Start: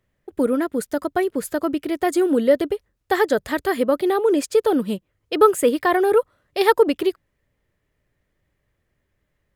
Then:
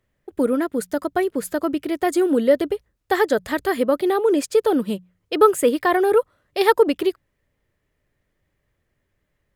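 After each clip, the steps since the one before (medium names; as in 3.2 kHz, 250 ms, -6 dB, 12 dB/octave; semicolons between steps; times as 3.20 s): hum notches 60/120/180 Hz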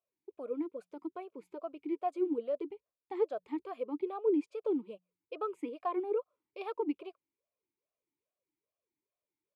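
talking filter a-u 2.4 Hz; trim -8 dB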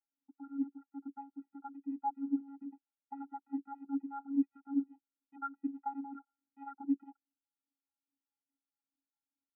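vocoder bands 16, square 277 Hz; four-pole ladder low-pass 1.4 kHz, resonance 65%; trim +8 dB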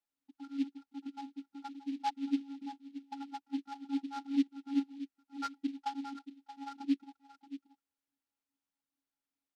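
delay 628 ms -13.5 dB; delay time shaken by noise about 3 kHz, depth 0.037 ms; trim +1 dB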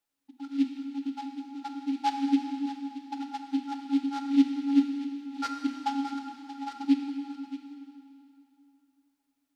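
plate-style reverb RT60 2.9 s, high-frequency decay 0.85×, DRR 3.5 dB; trim +6.5 dB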